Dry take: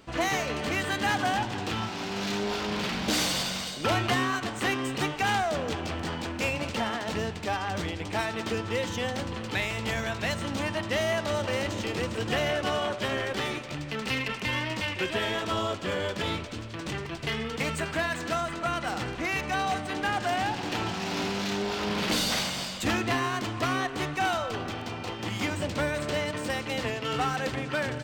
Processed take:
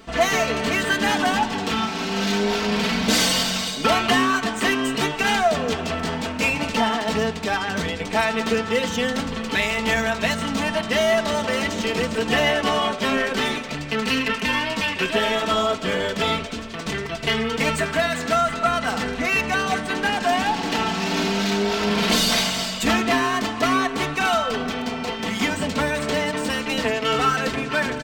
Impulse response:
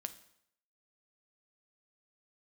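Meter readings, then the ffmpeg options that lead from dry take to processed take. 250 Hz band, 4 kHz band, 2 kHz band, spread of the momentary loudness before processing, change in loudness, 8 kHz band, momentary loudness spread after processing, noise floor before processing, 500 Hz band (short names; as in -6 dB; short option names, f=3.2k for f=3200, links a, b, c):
+8.0 dB, +8.0 dB, +8.0 dB, 6 LU, +7.5 dB, +8.0 dB, 5 LU, -37 dBFS, +7.5 dB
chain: -af "aecho=1:1:4.5:0.77,acontrast=75,flanger=delay=2.8:depth=1.3:regen=80:speed=0.18:shape=triangular,volume=3.5dB"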